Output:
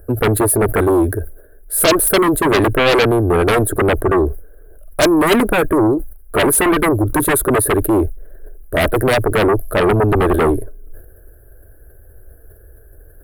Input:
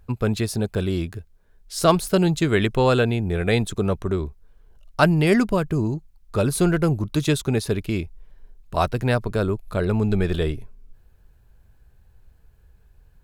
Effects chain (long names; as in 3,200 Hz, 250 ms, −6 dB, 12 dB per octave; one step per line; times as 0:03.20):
drawn EQ curve 110 Hz 0 dB, 170 Hz −19 dB, 300 Hz +9 dB, 640 Hz +10 dB, 920 Hz −13 dB, 1,600 Hz +5 dB, 2,400 Hz −21 dB, 4,200 Hz −17 dB, 6,100 Hz −25 dB, 10,000 Hz +13 dB
in parallel at −8.5 dB: sine wavefolder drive 19 dB, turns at 2.5 dBFS
on the sum: level that may fall only so fast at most 100 dB per second
level −6 dB